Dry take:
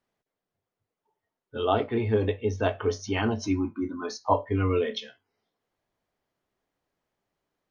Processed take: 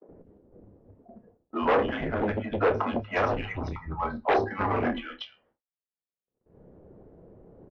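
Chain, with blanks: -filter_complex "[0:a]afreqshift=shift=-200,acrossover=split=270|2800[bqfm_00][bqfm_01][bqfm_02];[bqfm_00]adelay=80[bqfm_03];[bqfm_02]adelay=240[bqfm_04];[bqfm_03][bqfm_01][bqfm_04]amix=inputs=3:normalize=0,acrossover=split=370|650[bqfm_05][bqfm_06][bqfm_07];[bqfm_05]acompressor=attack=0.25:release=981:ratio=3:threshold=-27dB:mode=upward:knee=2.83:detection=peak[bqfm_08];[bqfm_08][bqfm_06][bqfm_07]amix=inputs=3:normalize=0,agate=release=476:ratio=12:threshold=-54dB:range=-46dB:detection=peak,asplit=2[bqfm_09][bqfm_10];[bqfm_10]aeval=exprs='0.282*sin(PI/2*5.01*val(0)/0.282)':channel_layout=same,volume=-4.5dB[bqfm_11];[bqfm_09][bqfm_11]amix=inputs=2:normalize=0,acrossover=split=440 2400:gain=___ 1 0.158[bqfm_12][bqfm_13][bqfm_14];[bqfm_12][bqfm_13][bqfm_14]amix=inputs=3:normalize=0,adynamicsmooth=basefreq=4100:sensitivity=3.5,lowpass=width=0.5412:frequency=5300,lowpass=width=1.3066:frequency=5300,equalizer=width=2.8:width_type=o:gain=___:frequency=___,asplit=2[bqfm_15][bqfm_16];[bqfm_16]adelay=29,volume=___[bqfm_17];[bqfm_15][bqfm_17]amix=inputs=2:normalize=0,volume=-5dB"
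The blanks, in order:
0.178, 5, 400, -11.5dB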